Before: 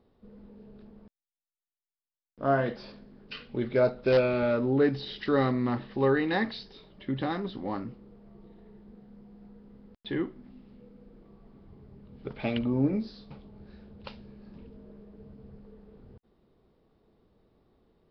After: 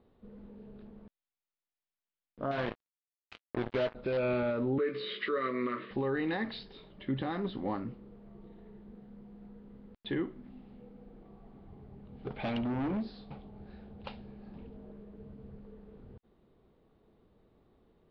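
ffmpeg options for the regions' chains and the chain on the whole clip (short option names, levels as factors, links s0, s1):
-filter_complex "[0:a]asettb=1/sr,asplit=3[s0][s1][s2];[s0]atrim=end=2.514[s3];[s1]atrim=start=2.51:end=3.95,asetpts=PTS-STARTPTS,afade=t=in:d=0.004:c=qsin,afade=t=out:st=1.436:d=0.004:c=qsin,acompressor=threshold=0.0398:ratio=3:attack=3.2:release=140:knee=1:detection=peak,acrusher=bits=4:mix=0:aa=0.5,asplit=2[s4][s5];[s5]adelay=19,volume=0.2[s6];[s4][s6]amix=inputs=2:normalize=0,atrim=end_sample=63504[s7];[s2]atrim=start=3.946[s8];[s3][s7]acrossfade=d=0.004:c1=hsin:c2=qsin[s9];[s9][s8]acrossfade=d=0.004:c1=qsin:c2=hsin,asettb=1/sr,asplit=3[s10][s11][s12];[s10]atrim=end=4.784[s13];[s11]atrim=start=4.78:end=5.91,asetpts=PTS-STARTPTS,afade=t=in:d=0.004:c=qsin,afade=t=out:st=1.126:d=0.004:c=qsin,asuperstop=centerf=790:order=4:qfactor=2.8,highpass=f=210:w=0.5412,highpass=f=210:w=1.3066,equalizer=f=250:t=q:w=4:g=-7,equalizer=f=440:t=q:w=4:g=5,equalizer=f=870:t=q:w=4:g=-7,equalizer=f=1200:t=q:w=4:g=10,equalizer=f=2200:t=q:w=4:g=9,lowpass=f=4700:w=0.5412,lowpass=f=4700:w=1.3066,asplit=2[s14][s15];[s15]adelay=16,volume=0.447[s16];[s14][s16]amix=inputs=2:normalize=0,atrim=end_sample=49833[s17];[s12]atrim=start=5.906[s18];[s13][s17]acrossfade=d=0.004:c1=hsin:c2=qsin[s19];[s19][s18]acrossfade=d=0.004:c1=qsin:c2=hsin,asettb=1/sr,asplit=3[s20][s21][s22];[s20]atrim=end=10.524[s23];[s21]atrim=start=10.52:end=14.92,asetpts=PTS-STARTPTS,afade=t=in:d=0.004:c=qsin,afade=t=out:st=4.396:d=0.004:c=qsin,equalizer=f=760:w=5.7:g=9,asoftclip=type=hard:threshold=0.0299[s24];[s22]atrim=start=14.916[s25];[s23][s24]acrossfade=d=0.004:c1=hsin:c2=qsin[s26];[s26][s25]acrossfade=d=0.004:c1=qsin:c2=hsin,lowpass=f=4000:w=0.5412,lowpass=f=4000:w=1.3066,alimiter=limit=0.0631:level=0:latency=1:release=119"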